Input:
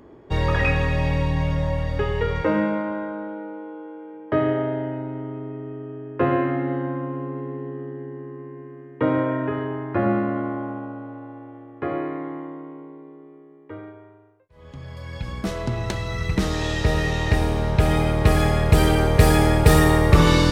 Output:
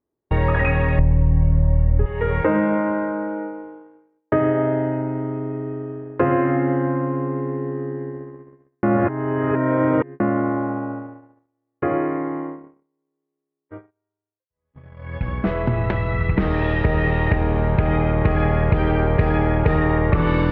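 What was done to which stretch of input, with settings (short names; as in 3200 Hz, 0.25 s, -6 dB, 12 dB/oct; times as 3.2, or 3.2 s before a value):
0.99–2.06 tilt -4.5 dB/oct
8.83–10.2 reverse
whole clip: LPF 2400 Hz 24 dB/oct; gate -34 dBFS, range -41 dB; compressor 6:1, threshold -20 dBFS; gain +6 dB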